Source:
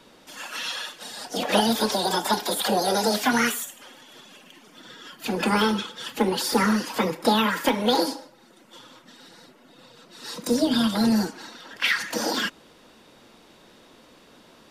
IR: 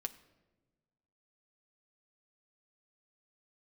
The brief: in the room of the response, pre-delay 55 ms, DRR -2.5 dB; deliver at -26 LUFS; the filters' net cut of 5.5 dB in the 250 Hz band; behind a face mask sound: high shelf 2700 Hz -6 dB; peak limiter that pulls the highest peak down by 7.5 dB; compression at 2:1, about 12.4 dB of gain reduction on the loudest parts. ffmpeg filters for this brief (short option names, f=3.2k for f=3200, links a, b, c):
-filter_complex "[0:a]equalizer=f=250:t=o:g=-6.5,acompressor=threshold=-42dB:ratio=2,alimiter=level_in=4dB:limit=-24dB:level=0:latency=1,volume=-4dB,asplit=2[a][b];[1:a]atrim=start_sample=2205,adelay=55[c];[b][c]afir=irnorm=-1:irlink=0,volume=4dB[d];[a][d]amix=inputs=2:normalize=0,highshelf=f=2.7k:g=-6,volume=10dB"